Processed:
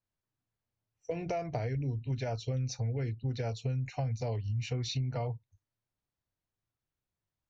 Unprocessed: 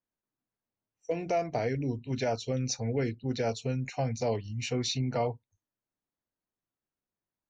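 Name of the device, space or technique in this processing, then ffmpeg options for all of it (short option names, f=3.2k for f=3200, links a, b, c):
jukebox: -af "lowpass=6.2k,lowshelf=f=160:t=q:w=1.5:g=8.5,acompressor=threshold=-31dB:ratio=5"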